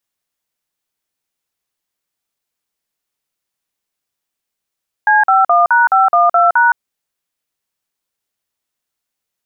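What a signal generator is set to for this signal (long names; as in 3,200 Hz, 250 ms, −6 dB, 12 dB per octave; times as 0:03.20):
touch tones "C51#512#", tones 166 ms, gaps 46 ms, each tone −10 dBFS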